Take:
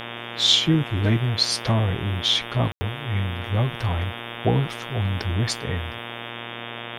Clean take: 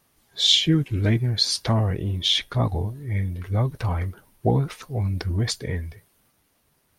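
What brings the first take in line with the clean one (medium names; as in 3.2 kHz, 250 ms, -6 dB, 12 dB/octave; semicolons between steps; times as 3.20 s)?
de-hum 117.6 Hz, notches 31; band-stop 3.3 kHz, Q 30; room tone fill 2.72–2.81 s; noise print and reduce 30 dB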